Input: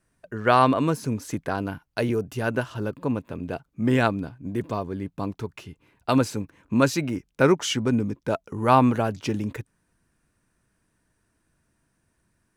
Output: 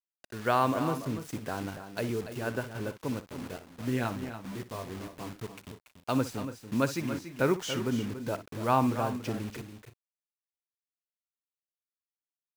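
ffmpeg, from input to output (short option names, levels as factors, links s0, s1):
-filter_complex "[0:a]asettb=1/sr,asplit=3[s0][s1][s2];[s0]atrim=end=3.294[s3];[s1]atrim=start=3.29:end=5.41,asetpts=PTS-STARTPTS,afade=t=in:d=0.004:c=qsin,afade=t=out:st=2.116:d=0.004:c=qsin,flanger=delay=15:depth=7.4:speed=1.6[s4];[s2]atrim=start=5.406[s5];[s3][s4]acrossfade=d=0.004:c1=hsin:c2=qsin[s6];[s6][s5]acrossfade=d=0.004:c1=qsin:c2=hsin,acrusher=bits=5:mix=0:aa=0.000001,aecho=1:1:60|285|321:0.188|0.299|0.112,adynamicequalizer=threshold=0.0112:dfrequency=2800:dqfactor=0.7:tfrequency=2800:tqfactor=0.7:attack=5:release=100:ratio=0.375:range=2:mode=cutabove:tftype=highshelf,volume=0.398"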